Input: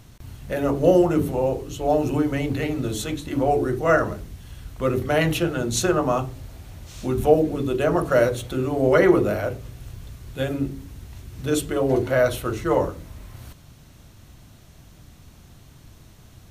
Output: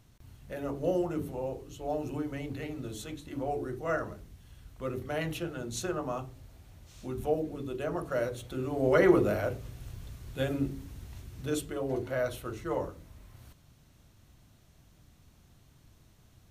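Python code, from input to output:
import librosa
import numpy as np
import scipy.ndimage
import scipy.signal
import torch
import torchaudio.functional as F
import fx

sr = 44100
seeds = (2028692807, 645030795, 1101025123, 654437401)

y = fx.gain(x, sr, db=fx.line((8.23, -13.0), (9.12, -5.5), (11.18, -5.5), (11.77, -12.0)))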